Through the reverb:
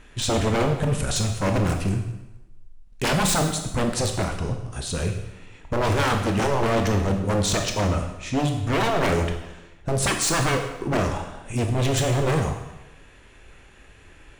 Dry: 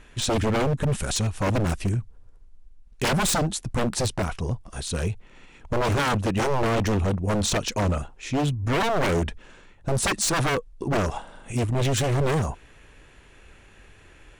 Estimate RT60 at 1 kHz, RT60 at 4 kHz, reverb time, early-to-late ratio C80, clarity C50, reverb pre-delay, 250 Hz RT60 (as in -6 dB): 0.95 s, 0.85 s, 0.95 s, 9.0 dB, 6.5 dB, 19 ms, 0.95 s